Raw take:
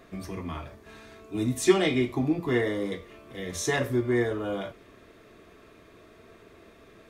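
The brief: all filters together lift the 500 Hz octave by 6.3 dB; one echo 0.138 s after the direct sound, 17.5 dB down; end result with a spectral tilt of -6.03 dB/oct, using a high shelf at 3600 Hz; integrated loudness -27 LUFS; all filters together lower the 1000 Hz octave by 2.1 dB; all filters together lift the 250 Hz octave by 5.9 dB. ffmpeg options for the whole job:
-af "equalizer=f=250:t=o:g=5,equalizer=f=500:t=o:g=8,equalizer=f=1k:t=o:g=-7.5,highshelf=f=3.6k:g=-5,aecho=1:1:138:0.133,volume=-4.5dB"

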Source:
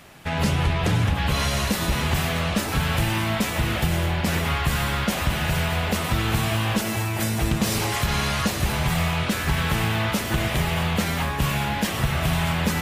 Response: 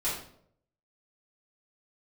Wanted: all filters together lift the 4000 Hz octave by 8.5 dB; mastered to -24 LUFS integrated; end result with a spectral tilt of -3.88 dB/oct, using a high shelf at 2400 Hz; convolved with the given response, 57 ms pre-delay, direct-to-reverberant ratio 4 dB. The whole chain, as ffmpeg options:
-filter_complex "[0:a]highshelf=f=2.4k:g=4.5,equalizer=f=4k:t=o:g=7,asplit=2[a][b];[1:a]atrim=start_sample=2205,adelay=57[c];[b][c]afir=irnorm=-1:irlink=0,volume=-11dB[d];[a][d]amix=inputs=2:normalize=0,volume=-5dB"

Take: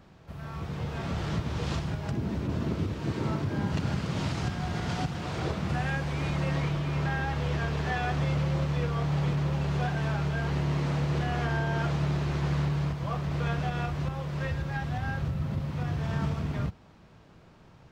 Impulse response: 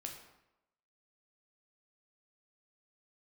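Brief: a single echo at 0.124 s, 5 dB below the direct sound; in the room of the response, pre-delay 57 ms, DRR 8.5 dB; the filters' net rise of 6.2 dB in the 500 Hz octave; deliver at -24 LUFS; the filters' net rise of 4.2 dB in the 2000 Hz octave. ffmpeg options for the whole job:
-filter_complex "[0:a]equalizer=f=500:t=o:g=7.5,equalizer=f=2k:t=o:g=5,aecho=1:1:124:0.562,asplit=2[a][b];[1:a]atrim=start_sample=2205,adelay=57[c];[b][c]afir=irnorm=-1:irlink=0,volume=-5.5dB[d];[a][d]amix=inputs=2:normalize=0,volume=3dB"

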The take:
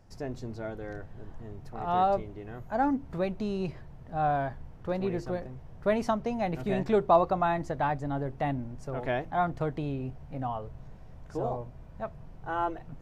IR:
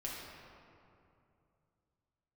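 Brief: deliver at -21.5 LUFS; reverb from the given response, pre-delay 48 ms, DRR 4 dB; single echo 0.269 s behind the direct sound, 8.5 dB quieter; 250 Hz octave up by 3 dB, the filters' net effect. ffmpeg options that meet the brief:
-filter_complex "[0:a]equalizer=f=250:t=o:g=4,aecho=1:1:269:0.376,asplit=2[a][b];[1:a]atrim=start_sample=2205,adelay=48[c];[b][c]afir=irnorm=-1:irlink=0,volume=-5dB[d];[a][d]amix=inputs=2:normalize=0,volume=6.5dB"

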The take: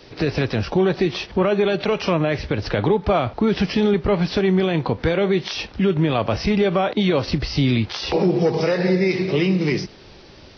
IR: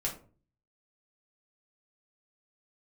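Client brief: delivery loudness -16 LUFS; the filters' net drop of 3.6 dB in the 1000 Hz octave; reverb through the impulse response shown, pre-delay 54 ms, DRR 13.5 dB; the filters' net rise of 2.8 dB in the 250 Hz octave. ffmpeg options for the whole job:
-filter_complex "[0:a]equalizer=f=250:t=o:g=4.5,equalizer=f=1k:t=o:g=-5.5,asplit=2[a][b];[1:a]atrim=start_sample=2205,adelay=54[c];[b][c]afir=irnorm=-1:irlink=0,volume=-17dB[d];[a][d]amix=inputs=2:normalize=0,volume=2.5dB"

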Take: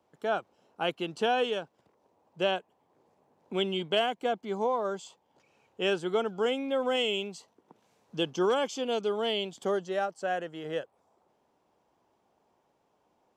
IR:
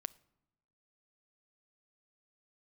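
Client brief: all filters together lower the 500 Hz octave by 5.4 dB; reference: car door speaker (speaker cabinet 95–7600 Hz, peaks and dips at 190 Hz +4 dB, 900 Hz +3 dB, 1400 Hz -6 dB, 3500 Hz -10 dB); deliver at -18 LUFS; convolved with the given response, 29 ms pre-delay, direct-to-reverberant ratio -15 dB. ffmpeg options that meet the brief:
-filter_complex "[0:a]equalizer=f=500:t=o:g=-7,asplit=2[a][b];[1:a]atrim=start_sample=2205,adelay=29[c];[b][c]afir=irnorm=-1:irlink=0,volume=18dB[d];[a][d]amix=inputs=2:normalize=0,highpass=95,equalizer=f=190:t=q:w=4:g=4,equalizer=f=900:t=q:w=4:g=3,equalizer=f=1.4k:t=q:w=4:g=-6,equalizer=f=3.5k:t=q:w=4:g=-10,lowpass=f=7.6k:w=0.5412,lowpass=f=7.6k:w=1.3066,volume=1dB"

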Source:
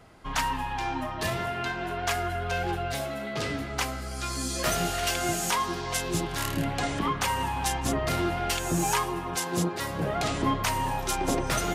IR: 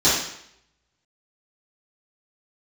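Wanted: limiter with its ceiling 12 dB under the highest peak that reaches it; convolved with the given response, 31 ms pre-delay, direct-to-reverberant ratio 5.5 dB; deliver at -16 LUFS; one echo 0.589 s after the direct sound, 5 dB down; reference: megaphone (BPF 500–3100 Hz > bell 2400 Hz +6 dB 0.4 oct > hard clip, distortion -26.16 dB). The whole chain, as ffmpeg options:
-filter_complex "[0:a]alimiter=level_in=2dB:limit=-24dB:level=0:latency=1,volume=-2dB,aecho=1:1:589:0.562,asplit=2[a][b];[1:a]atrim=start_sample=2205,adelay=31[c];[b][c]afir=irnorm=-1:irlink=0,volume=-24.5dB[d];[a][d]amix=inputs=2:normalize=0,highpass=500,lowpass=3.1k,equalizer=f=2.4k:t=o:w=0.4:g=6,asoftclip=type=hard:threshold=-27dB,volume=18.5dB"

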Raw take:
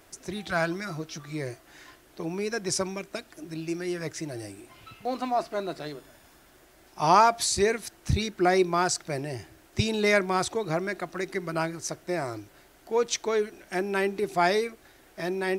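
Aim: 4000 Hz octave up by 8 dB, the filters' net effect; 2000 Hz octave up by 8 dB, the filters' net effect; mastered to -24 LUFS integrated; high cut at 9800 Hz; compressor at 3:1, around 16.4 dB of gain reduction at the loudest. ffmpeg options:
-af "lowpass=9.8k,equalizer=f=2k:t=o:g=8,equalizer=f=4k:t=o:g=8,acompressor=threshold=-35dB:ratio=3,volume=12dB"

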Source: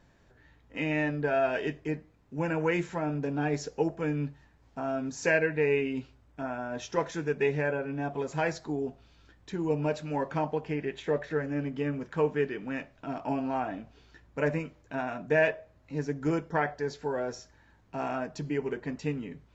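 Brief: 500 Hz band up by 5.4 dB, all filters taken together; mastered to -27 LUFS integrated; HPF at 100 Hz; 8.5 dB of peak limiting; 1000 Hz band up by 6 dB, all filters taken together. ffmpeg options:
-af "highpass=100,equalizer=f=500:t=o:g=5,equalizer=f=1k:t=o:g=6,volume=2dB,alimiter=limit=-14dB:level=0:latency=1"

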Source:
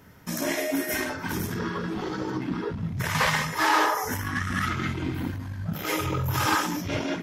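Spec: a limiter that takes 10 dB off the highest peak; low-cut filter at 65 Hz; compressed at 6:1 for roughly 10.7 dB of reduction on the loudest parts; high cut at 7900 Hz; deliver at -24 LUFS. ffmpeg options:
-af "highpass=65,lowpass=7.9k,acompressor=threshold=-30dB:ratio=6,volume=14dB,alimiter=limit=-15.5dB:level=0:latency=1"

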